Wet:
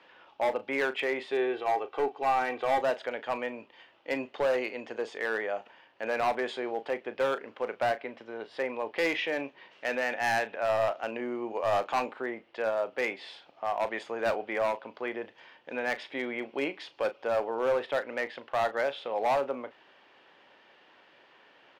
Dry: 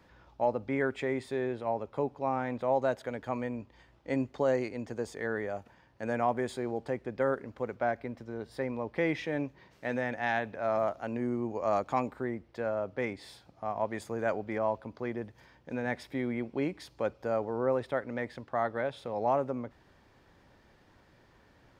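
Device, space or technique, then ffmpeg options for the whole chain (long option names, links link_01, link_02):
megaphone: -filter_complex "[0:a]highpass=460,lowpass=3800,equalizer=frequency=2900:width_type=o:width=0.51:gain=10,asoftclip=type=hard:threshold=-27.5dB,asplit=2[link_01][link_02];[link_02]adelay=36,volume=-13dB[link_03];[link_01][link_03]amix=inputs=2:normalize=0,asettb=1/sr,asplit=3[link_04][link_05][link_06];[link_04]atrim=end=1.324[link_07];[link_05]atrim=start=1.32:end=2.81,asetpts=PTS-STARTPTS,afade=type=in:duration=0.004:curve=qsin,afade=type=out:start_time=1.486:duration=0.004:curve=qsin,aecho=1:1:2.6:0.7,atrim=end_sample=65709[link_08];[link_06]atrim=start=2.806[link_09];[link_07][link_08]acrossfade=duration=0.004:curve1=hsin:curve2=qsin[link_10];[link_10][link_09]acrossfade=duration=0.004:curve1=qsin:curve2=hsin,volume=5dB"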